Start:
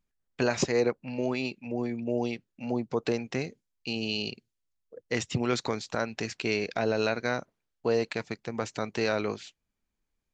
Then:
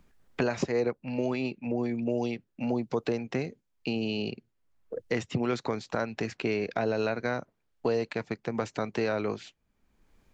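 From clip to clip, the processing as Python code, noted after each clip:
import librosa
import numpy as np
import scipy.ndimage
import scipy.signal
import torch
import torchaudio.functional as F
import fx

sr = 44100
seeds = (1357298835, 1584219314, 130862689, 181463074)

y = fx.high_shelf(x, sr, hz=3000.0, db=-10.0)
y = fx.band_squash(y, sr, depth_pct=70)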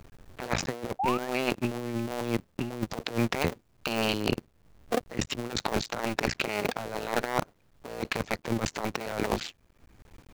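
y = fx.cycle_switch(x, sr, every=2, mode='muted')
y = fx.spec_paint(y, sr, seeds[0], shape='rise', start_s=0.99, length_s=0.3, low_hz=730.0, high_hz=1900.0, level_db=-41.0)
y = fx.over_compress(y, sr, threshold_db=-37.0, ratio=-0.5)
y = y * librosa.db_to_amplitude(8.0)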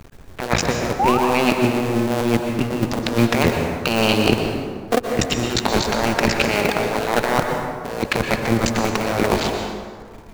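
y = fx.leveller(x, sr, passes=1)
y = fx.rev_plate(y, sr, seeds[1], rt60_s=1.9, hf_ratio=0.55, predelay_ms=105, drr_db=3.0)
y = y * librosa.db_to_amplitude(6.5)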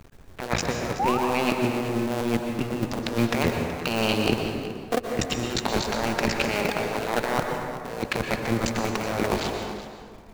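y = x + 10.0 ** (-14.0 / 20.0) * np.pad(x, (int(375 * sr / 1000.0), 0))[:len(x)]
y = y * librosa.db_to_amplitude(-6.5)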